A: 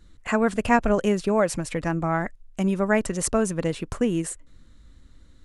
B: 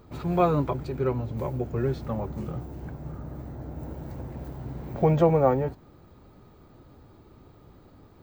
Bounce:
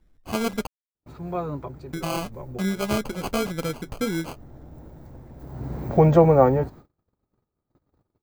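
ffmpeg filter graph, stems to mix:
-filter_complex "[0:a]flanger=delay=5.2:depth=5.1:regen=-51:speed=1.7:shape=triangular,acrusher=samples=24:mix=1:aa=0.000001,volume=-6dB,asplit=3[a][b][c];[a]atrim=end=0.67,asetpts=PTS-STARTPTS,afade=t=out:st=0.666:d=0.004:c=hsin[d];[b]atrim=start=0.67:end=1.93,asetpts=PTS-STARTPTS,volume=0[e];[c]atrim=start=1.93,asetpts=PTS-STARTPTS,afade=t=in:d=0.004:c=hsin[f];[d][e][f]concat=n=3:v=0:a=1,asplit=2[g][h];[1:a]agate=range=-36dB:threshold=-47dB:ratio=16:detection=peak,equalizer=f=3k:t=o:w=0.7:g=-5.5,adelay=950,volume=-1dB,afade=t=in:st=5.37:d=0.38:silence=0.223872[i];[h]apad=whole_len=404785[j];[i][j]sidechaincompress=threshold=-49dB:ratio=8:attack=44:release=109[k];[g][k]amix=inputs=2:normalize=0,dynaudnorm=f=130:g=5:m=7dB"

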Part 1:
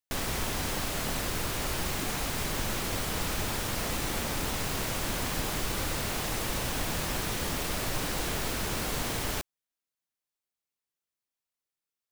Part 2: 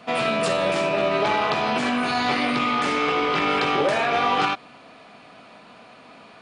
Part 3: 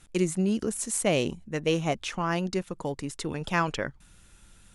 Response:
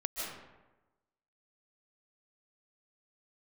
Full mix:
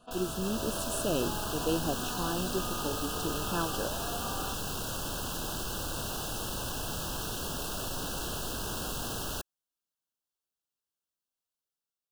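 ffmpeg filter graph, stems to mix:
-filter_complex "[0:a]aeval=exprs='0.0376*(abs(mod(val(0)/0.0376+3,4)-2)-1)':c=same,volume=-5.5dB[a];[1:a]acompressor=threshold=-26dB:ratio=6,volume=-15dB[b];[2:a]equalizer=f=320:w=1.5:g=7,volume=-12.5dB[c];[a][b][c]amix=inputs=3:normalize=0,asuperstop=centerf=2100:order=12:qfactor=2.2,dynaudnorm=f=380:g=3:m=4dB"

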